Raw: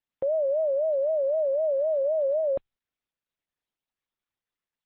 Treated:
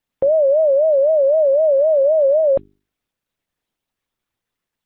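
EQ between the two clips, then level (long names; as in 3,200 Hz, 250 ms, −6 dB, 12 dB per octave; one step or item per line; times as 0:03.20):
low-shelf EQ 120 Hz +6.5 dB
parametric band 240 Hz +4 dB 2.7 octaves
mains-hum notches 50/100/150/200/250/300/350/400 Hz
+8.5 dB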